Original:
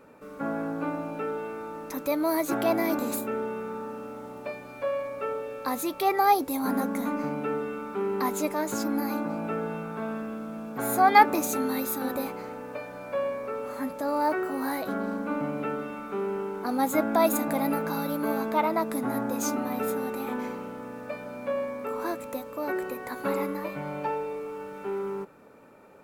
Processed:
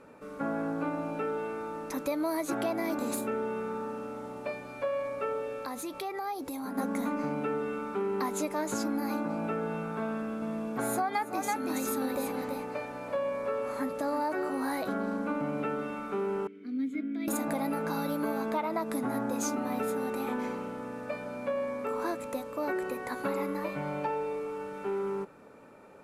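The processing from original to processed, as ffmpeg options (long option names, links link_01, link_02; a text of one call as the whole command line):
ffmpeg -i in.wav -filter_complex "[0:a]asplit=3[link_01][link_02][link_03];[link_01]afade=type=out:start_time=5.61:duration=0.02[link_04];[link_02]acompressor=threshold=-34dB:ratio=5:attack=3.2:release=140:knee=1:detection=peak,afade=type=in:start_time=5.61:duration=0.02,afade=type=out:start_time=6.77:duration=0.02[link_05];[link_03]afade=type=in:start_time=6.77:duration=0.02[link_06];[link_04][link_05][link_06]amix=inputs=3:normalize=0,asettb=1/sr,asplit=3[link_07][link_08][link_09];[link_07]atrim=end=10.094[link_10];[link_08]atrim=start=10.09:end=14.49,asetpts=PTS-STARTPTS,afade=type=in:duration=0.004:curve=qsin,afade=type=out:start_time=4.396:duration=0.004:curve=qsin,aecho=1:1:330:0.473,atrim=end_sample=194040[link_11];[link_09]atrim=start=14.486[link_12];[link_10][link_11]acrossfade=duration=0.004:curve1=hsin:curve2=qsin[link_13];[link_13][link_12]acrossfade=duration=0.004:curve1=qsin:curve2=hsin,asettb=1/sr,asplit=3[link_14][link_15][link_16];[link_14]atrim=end=16.474[link_17];[link_15]atrim=start=16.47:end=17.28,asetpts=PTS-STARTPTS,afade=type=in:duration=0.004:curve=qsin,afade=type=out:start_time=0.806:duration=0.004:curve=qsin,asplit=3[link_18][link_19][link_20];[link_18]bandpass=frequency=270:width_type=q:width=8,volume=0dB[link_21];[link_19]bandpass=frequency=2290:width_type=q:width=8,volume=-6dB[link_22];[link_20]bandpass=frequency=3010:width_type=q:width=8,volume=-9dB[link_23];[link_21][link_22][link_23]amix=inputs=3:normalize=0[link_24];[link_16]atrim=start=17.276[link_25];[link_17][link_24]acrossfade=duration=0.004:curve1=hsin:curve2=qsin[link_26];[link_26][link_25]acrossfade=duration=0.004:curve1=qsin:curve2=hsin,lowpass=frequency=12000:width=0.5412,lowpass=frequency=12000:width=1.3066,acompressor=threshold=-27dB:ratio=16" out.wav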